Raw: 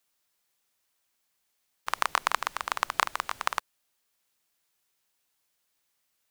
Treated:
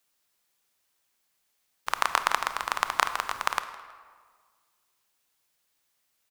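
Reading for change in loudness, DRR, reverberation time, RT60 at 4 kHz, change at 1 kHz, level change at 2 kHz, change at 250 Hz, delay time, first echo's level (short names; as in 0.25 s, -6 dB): +2.0 dB, 9.5 dB, 1.7 s, 1.0 s, +2.0 dB, +2.0 dB, +2.0 dB, 0.161 s, -20.0 dB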